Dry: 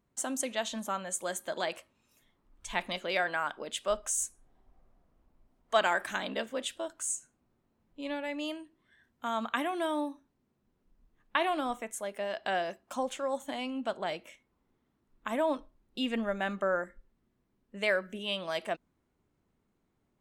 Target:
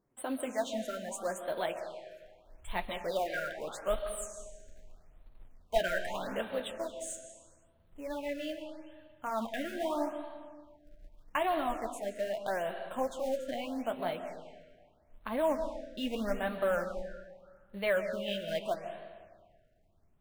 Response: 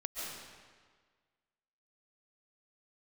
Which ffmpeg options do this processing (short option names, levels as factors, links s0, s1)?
-filter_complex "[0:a]equalizer=f=470:w=0.51:g=7.5,aeval=exprs='0.251*(cos(1*acos(clip(val(0)/0.251,-1,1)))-cos(1*PI/2))+0.00282*(cos(7*acos(clip(val(0)/0.251,-1,1)))-cos(7*PI/2))':c=same,asubboost=boost=8:cutoff=100,asplit=2[s0][s1];[s1]asoftclip=type=hard:threshold=0.0398,volume=0.282[s2];[s0][s2]amix=inputs=2:normalize=0,acrusher=bits=4:mode=log:mix=0:aa=0.000001,flanger=delay=6.2:depth=7.3:regen=-31:speed=0.97:shape=triangular,asplit=2[s3][s4];[1:a]atrim=start_sample=2205,lowpass=7100[s5];[s4][s5]afir=irnorm=-1:irlink=0,volume=0.562[s6];[s3][s6]amix=inputs=2:normalize=0,afftfilt=real='re*(1-between(b*sr/1024,950*pow(6500/950,0.5+0.5*sin(2*PI*0.8*pts/sr))/1.41,950*pow(6500/950,0.5+0.5*sin(2*PI*0.8*pts/sr))*1.41))':imag='im*(1-between(b*sr/1024,950*pow(6500/950,0.5+0.5*sin(2*PI*0.8*pts/sr))/1.41,950*pow(6500/950,0.5+0.5*sin(2*PI*0.8*pts/sr))*1.41))':win_size=1024:overlap=0.75,volume=0.501"